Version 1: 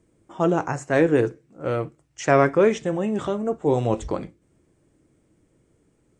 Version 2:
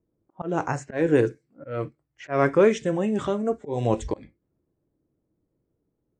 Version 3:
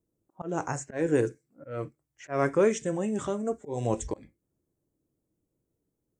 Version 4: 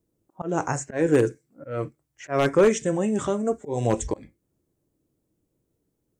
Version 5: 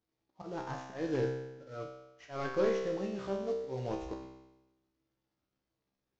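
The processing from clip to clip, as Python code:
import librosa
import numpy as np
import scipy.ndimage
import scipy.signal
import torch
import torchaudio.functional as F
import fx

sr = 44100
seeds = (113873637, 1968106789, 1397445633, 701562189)

y1 = fx.auto_swell(x, sr, attack_ms=200.0)
y1 = fx.env_lowpass(y1, sr, base_hz=980.0, full_db=-21.0)
y1 = fx.noise_reduce_blind(y1, sr, reduce_db=12)
y2 = fx.high_shelf_res(y1, sr, hz=5400.0, db=8.5, q=1.5)
y2 = y2 * 10.0 ** (-5.0 / 20.0)
y3 = 10.0 ** (-15.5 / 20.0) * (np.abs((y2 / 10.0 ** (-15.5 / 20.0) + 3.0) % 4.0 - 2.0) - 1.0)
y3 = y3 * 10.0 ** (5.5 / 20.0)
y4 = fx.cvsd(y3, sr, bps=32000)
y4 = fx.comb_fb(y4, sr, f0_hz=65.0, decay_s=1.0, harmonics='all', damping=0.0, mix_pct=90)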